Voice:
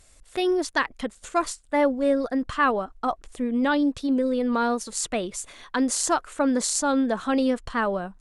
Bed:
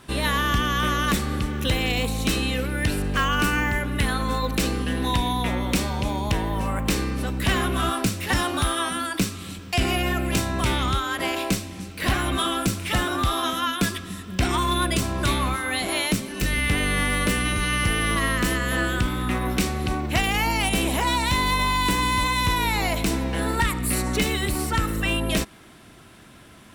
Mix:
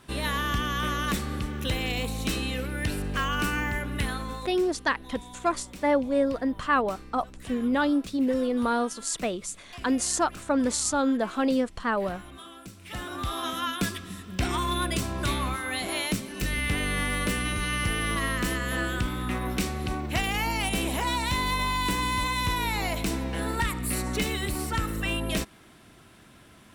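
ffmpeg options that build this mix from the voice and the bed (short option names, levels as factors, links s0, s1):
-filter_complex "[0:a]adelay=4100,volume=0.794[s0];[1:a]volume=3.35,afade=t=out:st=4.01:d=0.59:silence=0.16788,afade=t=in:st=12.73:d=0.88:silence=0.158489[s1];[s0][s1]amix=inputs=2:normalize=0"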